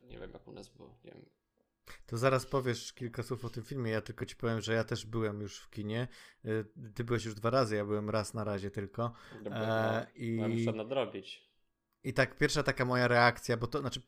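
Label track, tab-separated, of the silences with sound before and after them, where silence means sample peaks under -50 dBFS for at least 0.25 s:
1.240000	1.870000	silence
11.380000	12.050000	silence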